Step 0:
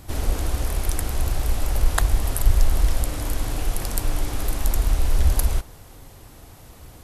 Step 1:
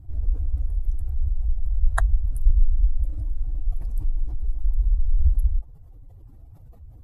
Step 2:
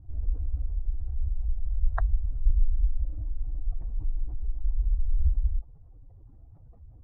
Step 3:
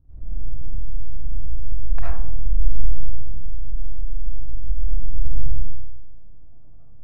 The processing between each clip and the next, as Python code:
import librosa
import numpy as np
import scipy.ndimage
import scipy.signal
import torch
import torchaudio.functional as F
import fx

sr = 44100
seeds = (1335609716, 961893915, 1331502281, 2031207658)

y1 = fx.spec_expand(x, sr, power=2.2)
y2 = scipy.signal.sosfilt(scipy.signal.butter(2, 1300.0, 'lowpass', fs=sr, output='sos'), y1)
y2 = F.gain(torch.from_numpy(y2), -5.0).numpy()
y3 = np.maximum(y2, 0.0)
y3 = fx.rev_freeverb(y3, sr, rt60_s=0.85, hf_ratio=0.3, predelay_ms=30, drr_db=-8.5)
y3 = F.gain(torch.from_numpy(y3), -7.0).numpy()